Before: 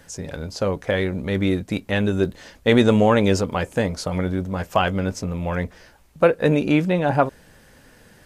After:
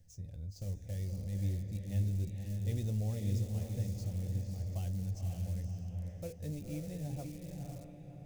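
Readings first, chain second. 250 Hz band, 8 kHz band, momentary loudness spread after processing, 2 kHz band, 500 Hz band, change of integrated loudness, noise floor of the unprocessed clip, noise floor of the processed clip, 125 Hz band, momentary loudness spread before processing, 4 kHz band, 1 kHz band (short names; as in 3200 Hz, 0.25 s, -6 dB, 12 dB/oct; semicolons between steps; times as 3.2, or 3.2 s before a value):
-21.0 dB, -14.5 dB, 10 LU, under -30 dB, -28.5 dB, -17.0 dB, -52 dBFS, -52 dBFS, -8.5 dB, 10 LU, -25.0 dB, -33.0 dB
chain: median filter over 5 samples; resonator 100 Hz, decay 0.19 s, harmonics all, mix 50%; diffused feedback echo 0.535 s, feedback 40%, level -3.5 dB; in parallel at -10 dB: wrapped overs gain 21.5 dB; on the sum: band shelf 1200 Hz -12 dB 1 oct; notch 400 Hz, Q 12; reverse; upward compressor, threshold -33 dBFS; reverse; EQ curve 110 Hz 0 dB, 260 Hz -18 dB, 1900 Hz -24 dB, 3200 Hz -22 dB, 6200 Hz -9 dB; gain -6.5 dB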